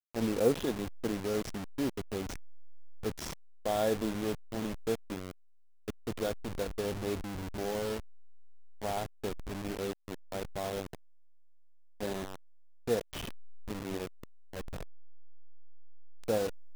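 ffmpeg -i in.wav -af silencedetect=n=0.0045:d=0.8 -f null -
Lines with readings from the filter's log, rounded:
silence_start: 10.95
silence_end: 12.01 | silence_duration: 1.06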